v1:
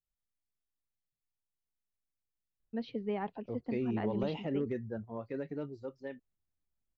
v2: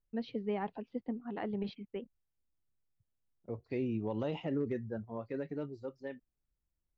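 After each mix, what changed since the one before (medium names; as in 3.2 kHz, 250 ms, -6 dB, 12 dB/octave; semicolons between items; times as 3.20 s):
first voice: entry -2.60 s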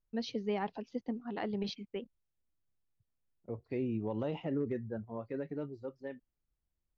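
first voice: remove distance through air 470 m; master: add treble shelf 3.6 kHz -7.5 dB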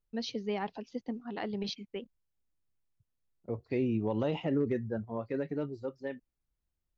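second voice +4.5 dB; master: add treble shelf 3.6 kHz +7.5 dB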